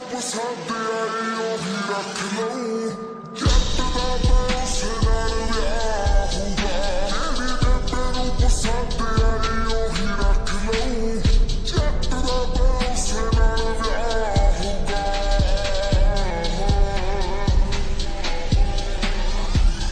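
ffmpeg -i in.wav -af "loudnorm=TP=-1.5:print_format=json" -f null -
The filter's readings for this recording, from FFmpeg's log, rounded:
"input_i" : "-23.5",
"input_tp" : "-4.4",
"input_lra" : "1.7",
"input_thresh" : "-33.5",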